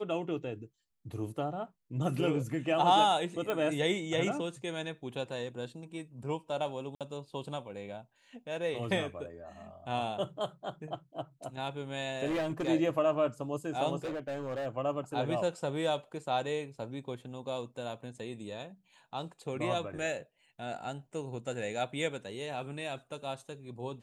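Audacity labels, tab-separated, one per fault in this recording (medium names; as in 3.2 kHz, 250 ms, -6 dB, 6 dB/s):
3.500000	3.500000	pop -20 dBFS
6.950000	7.010000	dropout 57 ms
12.250000	12.690000	clipped -29 dBFS
14.040000	14.670000	clipped -33 dBFS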